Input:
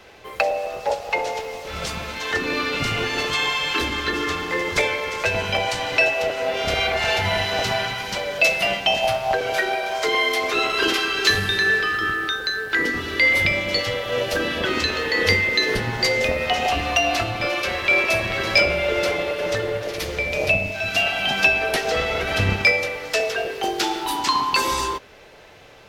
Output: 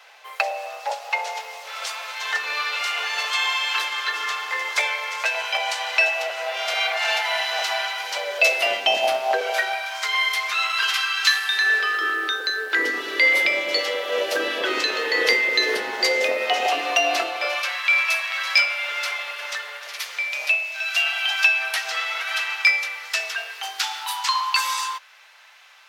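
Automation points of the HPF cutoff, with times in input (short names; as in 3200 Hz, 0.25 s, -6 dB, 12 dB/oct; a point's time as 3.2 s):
HPF 24 dB/oct
7.83 s 720 Hz
9.13 s 260 Hz
9.88 s 960 Hz
11.36 s 960 Hz
12.14 s 350 Hz
17.21 s 350 Hz
17.79 s 990 Hz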